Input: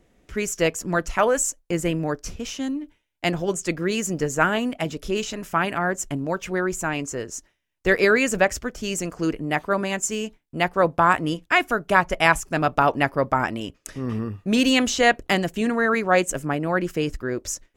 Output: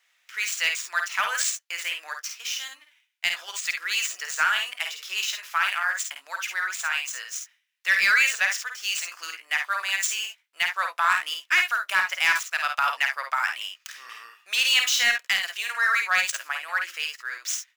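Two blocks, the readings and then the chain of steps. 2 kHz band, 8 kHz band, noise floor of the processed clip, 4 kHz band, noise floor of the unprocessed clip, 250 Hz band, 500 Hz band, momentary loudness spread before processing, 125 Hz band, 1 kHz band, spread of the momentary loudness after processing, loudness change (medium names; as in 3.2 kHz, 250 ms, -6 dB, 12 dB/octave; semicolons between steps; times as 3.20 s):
+2.0 dB, 0.0 dB, -68 dBFS, +5.0 dB, -70 dBFS, under -35 dB, -23.5 dB, 11 LU, under -35 dB, -5.0 dB, 12 LU, -1.5 dB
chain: median filter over 5 samples; Bessel high-pass 2 kHz, order 4; in parallel at +2 dB: peak limiter -16.5 dBFS, peak gain reduction 8 dB; on the sum: saturation -10 dBFS, distortion -19 dB; on a send: early reflections 52 ms -5.5 dB, 67 ms -12 dB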